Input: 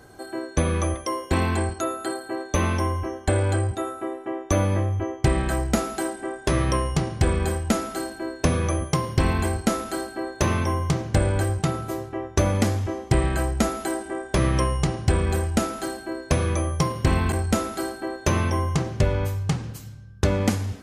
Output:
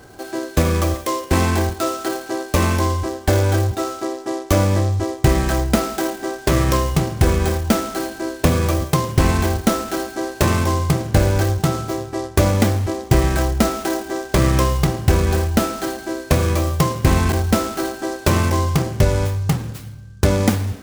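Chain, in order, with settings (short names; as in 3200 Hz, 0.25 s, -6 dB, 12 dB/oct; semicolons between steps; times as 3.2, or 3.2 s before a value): noise-modulated delay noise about 5200 Hz, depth 0.041 ms; gain +5.5 dB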